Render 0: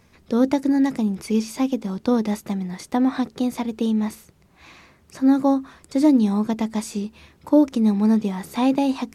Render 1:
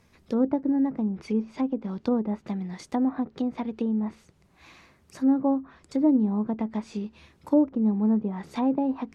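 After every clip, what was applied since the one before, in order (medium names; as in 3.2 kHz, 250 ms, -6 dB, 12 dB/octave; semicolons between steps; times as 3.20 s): low-pass that closes with the level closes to 980 Hz, closed at -18 dBFS; trim -5 dB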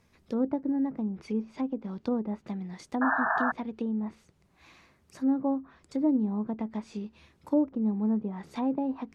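painted sound noise, 3.01–3.52 s, 620–1800 Hz -23 dBFS; trim -4.5 dB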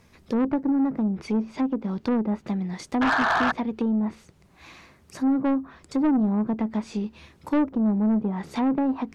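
saturation -26.5 dBFS, distortion -12 dB; trim +9 dB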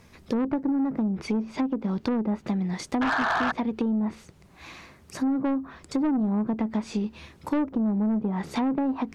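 compression, threshold -26 dBFS, peak gain reduction 7 dB; trim +3 dB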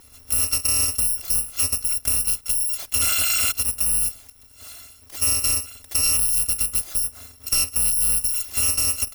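bit-reversed sample order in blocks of 256 samples; trim +4 dB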